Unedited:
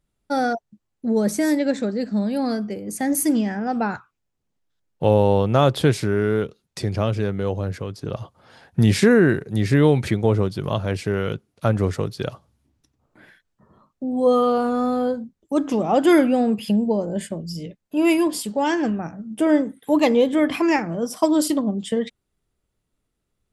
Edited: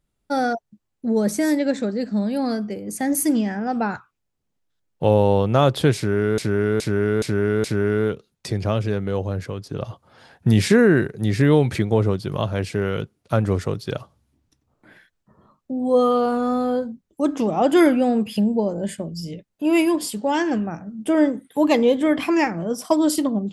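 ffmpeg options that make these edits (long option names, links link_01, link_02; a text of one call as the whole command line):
ffmpeg -i in.wav -filter_complex "[0:a]asplit=5[link_01][link_02][link_03][link_04][link_05];[link_01]atrim=end=6.382[link_06];[link_02]atrim=start=5.958:end=6.382[link_07];[link_03]atrim=start=5.958:end=6.382[link_08];[link_04]atrim=start=5.958:end=6.382[link_09];[link_05]atrim=start=5.958[link_10];[link_06][link_07]acrossfade=duration=0.004:curve1=hsin:curve2=hsin[link_11];[link_11][link_08]acrossfade=duration=0.004:curve1=hsin:curve2=hsin[link_12];[link_12][link_09]acrossfade=duration=0.004:curve1=hsin:curve2=hsin[link_13];[link_13][link_10]acrossfade=duration=0.004:curve1=hsin:curve2=hsin" out.wav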